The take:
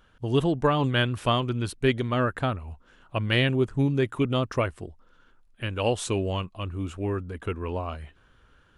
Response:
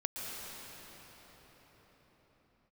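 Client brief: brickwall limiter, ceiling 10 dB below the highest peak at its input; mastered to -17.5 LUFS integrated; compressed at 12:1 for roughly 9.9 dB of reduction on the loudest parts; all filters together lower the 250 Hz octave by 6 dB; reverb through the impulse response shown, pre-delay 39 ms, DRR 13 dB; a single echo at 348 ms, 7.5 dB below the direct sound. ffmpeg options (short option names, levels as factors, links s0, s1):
-filter_complex "[0:a]equalizer=f=250:t=o:g=-8,acompressor=threshold=0.0355:ratio=12,alimiter=level_in=1.68:limit=0.0631:level=0:latency=1,volume=0.596,aecho=1:1:348:0.422,asplit=2[s0][s1];[1:a]atrim=start_sample=2205,adelay=39[s2];[s1][s2]afir=irnorm=-1:irlink=0,volume=0.15[s3];[s0][s3]amix=inputs=2:normalize=0,volume=10.6"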